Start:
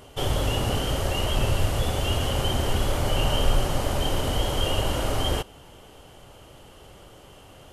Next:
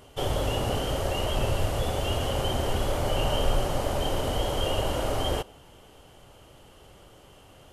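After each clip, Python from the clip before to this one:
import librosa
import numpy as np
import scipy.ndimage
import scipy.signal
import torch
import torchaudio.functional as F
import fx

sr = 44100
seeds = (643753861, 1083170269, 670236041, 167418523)

y = fx.dynamic_eq(x, sr, hz=590.0, q=0.9, threshold_db=-41.0, ratio=4.0, max_db=5)
y = y * 10.0 ** (-4.0 / 20.0)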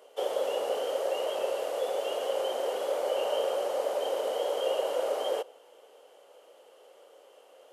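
y = fx.ladder_highpass(x, sr, hz=450.0, resonance_pct=65)
y = y * 10.0 ** (4.0 / 20.0)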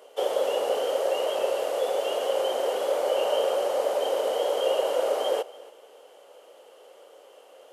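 y = x + 10.0 ** (-20.5 / 20.0) * np.pad(x, (int(282 * sr / 1000.0), 0))[:len(x)]
y = y * 10.0 ** (4.5 / 20.0)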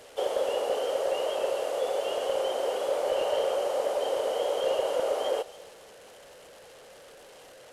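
y = fx.delta_mod(x, sr, bps=64000, step_db=-42.0)
y = y * 10.0 ** (-2.5 / 20.0)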